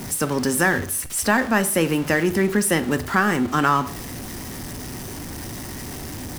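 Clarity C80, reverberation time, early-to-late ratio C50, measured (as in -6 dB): 19.5 dB, 0.50 s, 15.5 dB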